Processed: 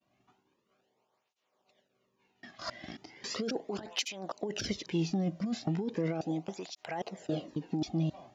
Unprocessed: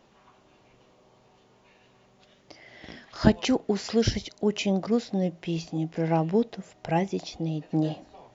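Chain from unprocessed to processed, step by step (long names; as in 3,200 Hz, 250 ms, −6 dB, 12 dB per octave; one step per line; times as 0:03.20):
slices reordered back to front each 270 ms, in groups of 3
downward expander −49 dBFS
compressor whose output falls as the input rises −27 dBFS, ratio −1
soft clipping −16 dBFS, distortion −25 dB
through-zero flanger with one copy inverted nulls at 0.37 Hz, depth 2.4 ms
level −1.5 dB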